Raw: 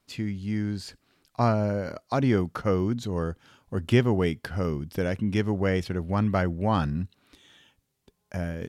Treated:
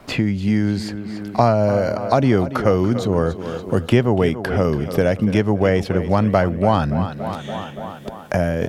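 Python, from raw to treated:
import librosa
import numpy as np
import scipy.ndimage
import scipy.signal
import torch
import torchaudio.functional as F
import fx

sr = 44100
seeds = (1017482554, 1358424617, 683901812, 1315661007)

y = fx.peak_eq(x, sr, hz=640.0, db=6.5, octaves=0.83)
y = fx.echo_tape(y, sr, ms=285, feedback_pct=53, wet_db=-13.5, lp_hz=5100.0, drive_db=7.0, wow_cents=7)
y = fx.band_squash(y, sr, depth_pct=70)
y = F.gain(torch.from_numpy(y), 6.5).numpy()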